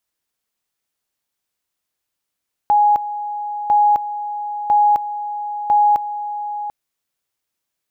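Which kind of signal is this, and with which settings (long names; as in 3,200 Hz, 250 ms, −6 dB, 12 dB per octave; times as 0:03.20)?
tone at two levels in turn 831 Hz −10 dBFS, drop 12.5 dB, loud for 0.26 s, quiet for 0.74 s, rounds 4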